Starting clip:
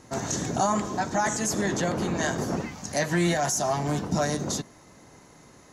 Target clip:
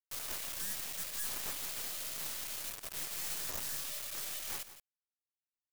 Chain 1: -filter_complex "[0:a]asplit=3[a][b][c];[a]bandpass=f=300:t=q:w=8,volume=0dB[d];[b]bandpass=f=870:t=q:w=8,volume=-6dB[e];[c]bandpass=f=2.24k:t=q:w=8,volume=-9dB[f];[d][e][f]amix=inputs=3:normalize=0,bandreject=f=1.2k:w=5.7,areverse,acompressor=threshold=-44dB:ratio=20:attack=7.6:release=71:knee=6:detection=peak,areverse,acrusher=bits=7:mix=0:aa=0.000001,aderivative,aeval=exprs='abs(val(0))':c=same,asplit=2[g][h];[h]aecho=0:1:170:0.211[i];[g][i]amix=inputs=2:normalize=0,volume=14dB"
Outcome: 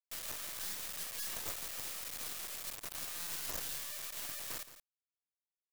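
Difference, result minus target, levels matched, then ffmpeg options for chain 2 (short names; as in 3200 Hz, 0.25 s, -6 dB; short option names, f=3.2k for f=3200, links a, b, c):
compressor: peak gain reduction +5.5 dB
-filter_complex "[0:a]asplit=3[a][b][c];[a]bandpass=f=300:t=q:w=8,volume=0dB[d];[b]bandpass=f=870:t=q:w=8,volume=-6dB[e];[c]bandpass=f=2.24k:t=q:w=8,volume=-9dB[f];[d][e][f]amix=inputs=3:normalize=0,bandreject=f=1.2k:w=5.7,areverse,acompressor=threshold=-38dB:ratio=20:attack=7.6:release=71:knee=6:detection=peak,areverse,acrusher=bits=7:mix=0:aa=0.000001,aderivative,aeval=exprs='abs(val(0))':c=same,asplit=2[g][h];[h]aecho=0:1:170:0.211[i];[g][i]amix=inputs=2:normalize=0,volume=14dB"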